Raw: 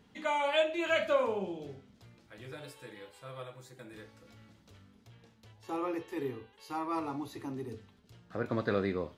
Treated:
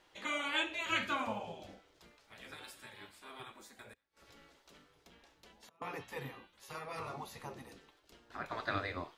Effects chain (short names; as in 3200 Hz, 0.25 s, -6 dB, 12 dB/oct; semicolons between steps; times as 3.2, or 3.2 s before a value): 3.93–5.82 flipped gate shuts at -44 dBFS, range -30 dB; spectral gate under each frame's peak -10 dB weak; gain +2 dB